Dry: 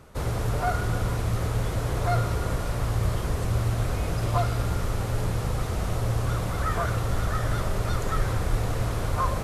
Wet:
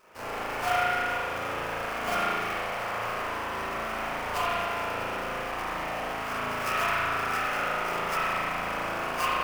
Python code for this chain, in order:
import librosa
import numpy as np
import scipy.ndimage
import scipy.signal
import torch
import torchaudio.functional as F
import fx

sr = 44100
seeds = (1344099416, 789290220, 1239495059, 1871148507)

y = scipy.signal.sosfilt(scipy.signal.butter(2, 870.0, 'highpass', fs=sr, output='sos'), x)
y = fx.sample_hold(y, sr, seeds[0], rate_hz=3800.0, jitter_pct=20)
y = fx.rev_spring(y, sr, rt60_s=2.3, pass_ms=(36,), chirp_ms=65, drr_db=-10.0)
y = F.gain(torch.from_numpy(y), -3.5).numpy()